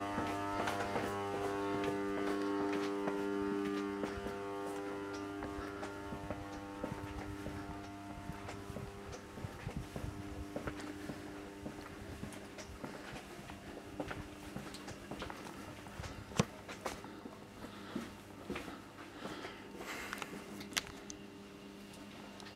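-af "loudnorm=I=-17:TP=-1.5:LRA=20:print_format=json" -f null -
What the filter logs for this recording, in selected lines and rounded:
"input_i" : "-43.1",
"input_tp" : "-14.2",
"input_lra" : "9.5",
"input_thresh" : "-53.1",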